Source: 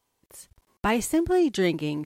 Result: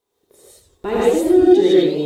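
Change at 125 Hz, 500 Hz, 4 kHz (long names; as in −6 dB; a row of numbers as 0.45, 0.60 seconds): +1.0, +13.0, +6.0 decibels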